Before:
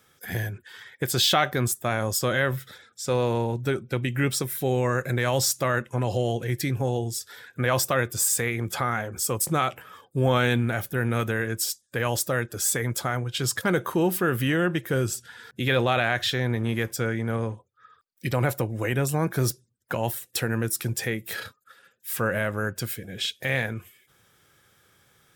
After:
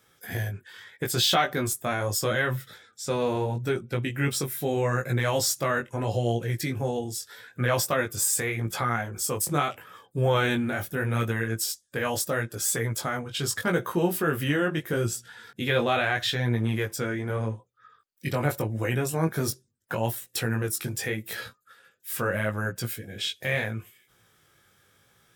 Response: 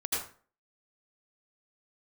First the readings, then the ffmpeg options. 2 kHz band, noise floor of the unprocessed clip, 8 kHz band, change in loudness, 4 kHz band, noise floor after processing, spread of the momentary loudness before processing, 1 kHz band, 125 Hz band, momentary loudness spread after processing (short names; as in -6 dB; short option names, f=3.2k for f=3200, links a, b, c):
-1.5 dB, -65 dBFS, -1.5 dB, -1.5 dB, -1.5 dB, -65 dBFS, 10 LU, -1.0 dB, -2.0 dB, 11 LU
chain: -af "flanger=delay=17:depth=3.9:speed=0.79,volume=1.5dB"